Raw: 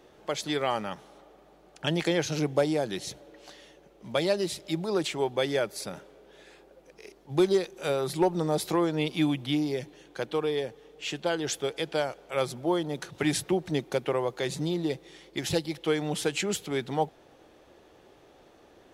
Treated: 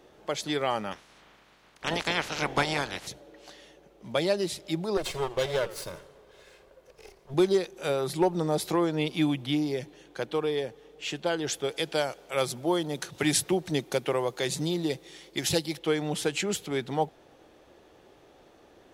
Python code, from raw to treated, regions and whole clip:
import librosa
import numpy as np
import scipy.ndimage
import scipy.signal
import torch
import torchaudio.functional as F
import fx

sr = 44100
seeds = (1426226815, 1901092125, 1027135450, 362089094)

y = fx.spec_clip(x, sr, under_db=27, at=(0.91, 3.06), fade=0.02)
y = fx.lowpass(y, sr, hz=2600.0, slope=6, at=(0.91, 3.06), fade=0.02)
y = fx.chain(y, sr, fx.lower_of_two(delay_ms=1.9),
    fx.echo_warbled(ms=83, feedback_pct=45, rate_hz=2.8, cents=191, wet_db=-16.0), at=(4.97, 7.34))
y = fx.chain(y, sr, fx.highpass(hz=45.0, slope=12),
    fx.high_shelf(hz=3500.0, db=7.5), at=(11.69, 15.79))